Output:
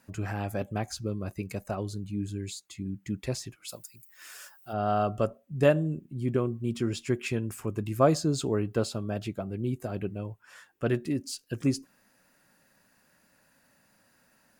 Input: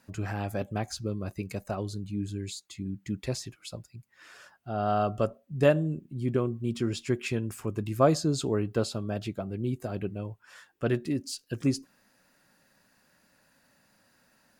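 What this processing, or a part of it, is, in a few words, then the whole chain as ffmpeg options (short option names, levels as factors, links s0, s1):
exciter from parts: -filter_complex "[0:a]asplit=2[s0][s1];[s1]highpass=f=3200:w=0.5412,highpass=f=3200:w=1.3066,asoftclip=type=tanh:threshold=0.0106,highpass=f=3100:p=1,volume=0.355[s2];[s0][s2]amix=inputs=2:normalize=0,asplit=3[s3][s4][s5];[s3]afade=t=out:st=3.68:d=0.02[s6];[s4]aemphasis=mode=production:type=riaa,afade=t=in:st=3.68:d=0.02,afade=t=out:st=4.72:d=0.02[s7];[s5]afade=t=in:st=4.72:d=0.02[s8];[s6][s7][s8]amix=inputs=3:normalize=0"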